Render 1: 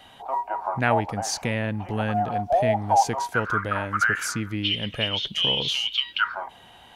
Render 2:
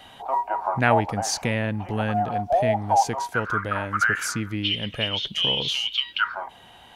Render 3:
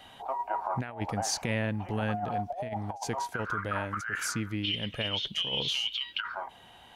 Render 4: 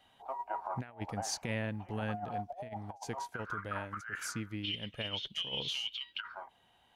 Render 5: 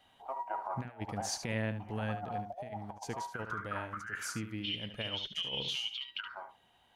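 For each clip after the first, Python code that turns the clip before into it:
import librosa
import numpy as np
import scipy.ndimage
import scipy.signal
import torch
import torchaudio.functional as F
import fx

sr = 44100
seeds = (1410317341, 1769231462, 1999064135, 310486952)

y1 = fx.rider(x, sr, range_db=4, speed_s=2.0)
y2 = fx.over_compress(y1, sr, threshold_db=-24.0, ratio=-0.5)
y2 = y2 * 10.0 ** (-6.5 / 20.0)
y3 = fx.upward_expand(y2, sr, threshold_db=-47.0, expansion=1.5)
y3 = y3 * 10.0 ** (-5.0 / 20.0)
y4 = y3 + 10.0 ** (-10.0 / 20.0) * np.pad(y3, (int(73 * sr / 1000.0), 0))[:len(y3)]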